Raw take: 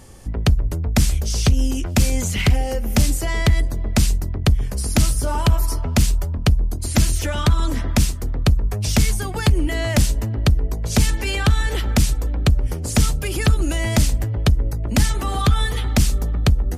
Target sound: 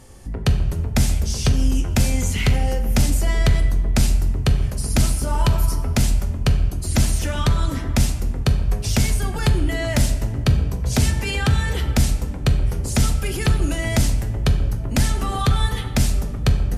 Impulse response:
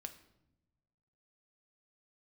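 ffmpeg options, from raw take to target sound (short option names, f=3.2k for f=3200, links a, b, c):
-filter_complex "[0:a]asplit=3[a][b][c];[a]afade=t=out:st=10.35:d=0.02[d];[b]afreqshift=13,afade=t=in:st=10.35:d=0.02,afade=t=out:st=11.91:d=0.02[e];[c]afade=t=in:st=11.91:d=0.02[f];[d][e][f]amix=inputs=3:normalize=0[g];[1:a]atrim=start_sample=2205,asetrate=26460,aresample=44100[h];[g][h]afir=irnorm=-1:irlink=0"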